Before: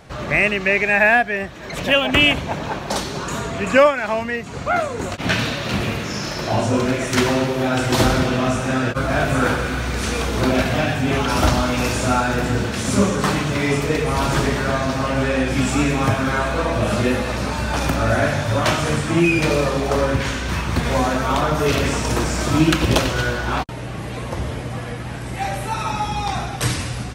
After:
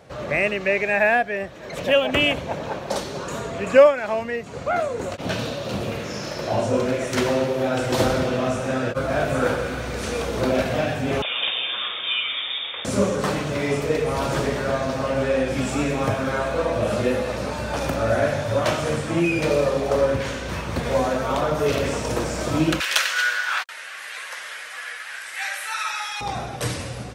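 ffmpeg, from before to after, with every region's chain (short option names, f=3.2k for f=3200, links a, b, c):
-filter_complex "[0:a]asettb=1/sr,asplit=3[a][b][c];[a]atrim=end=5.204[d];[b]atrim=start=5.2:end=5.92,asetpts=PTS-STARTPTS,afade=t=in:d=0.004:c=qsin,afade=t=out:st=0.716:d=0.004:c=qsin,equalizer=f=2k:w=1.5:g=-7,asoftclip=type=hard:threshold=-11dB[e];[c]atrim=start=5.916[f];[d][e]acrossfade=d=0.004:c1=hsin:c2=qsin[g];[g][f]acrossfade=d=0.004:c1=qsin:c2=hsin,asettb=1/sr,asplit=3[h][i][j];[h]atrim=end=11.224[k];[i]atrim=start=11.22:end=12.85,asetpts=PTS-STARTPTS,afade=t=in:d=0.004:c=qsin,afade=t=out:st=1.626:d=0.004:c=qsin,highpass=160,lowpass=f=3.2k:t=q:w=0.5098,lowpass=f=3.2k:t=q:w=0.6013,lowpass=f=3.2k:t=q:w=0.9,lowpass=f=3.2k:t=q:w=2.563,afreqshift=-3800[l];[j]atrim=start=12.846[m];[k][l]acrossfade=d=0.004:c1=hsin:c2=qsin[n];[n][m]acrossfade=d=0.004:c1=qsin:c2=hsin,asettb=1/sr,asplit=3[o][p][q];[o]atrim=end=22.804[r];[p]atrim=start=22.8:end=26.21,asetpts=PTS-STARTPTS,afade=t=in:d=0.004:c=qsin,afade=t=out:st=3.406:d=0.004:c=qsin,highpass=f=1.6k:t=q:w=2.7,highshelf=f=2.1k:g=8[s];[q]atrim=start=26.206[t];[r][s]acrossfade=d=0.004:c1=hsin:c2=qsin[u];[u][t]acrossfade=d=0.004:c1=qsin:c2=hsin,highpass=61,equalizer=f=530:w=2.2:g=8.5,volume=-6dB"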